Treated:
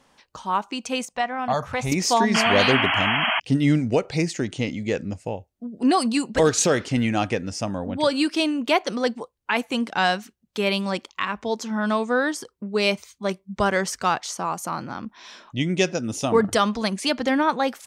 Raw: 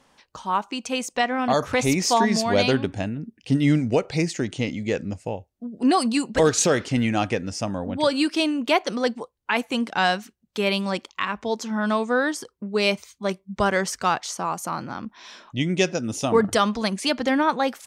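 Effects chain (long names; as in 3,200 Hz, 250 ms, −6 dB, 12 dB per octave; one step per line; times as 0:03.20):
0:01.05–0:01.92: drawn EQ curve 180 Hz 0 dB, 320 Hz −13 dB, 770 Hz 0 dB, 5,300 Hz −8 dB
0:02.34–0:03.40: sound drawn into the spectrogram noise 610–3,300 Hz −22 dBFS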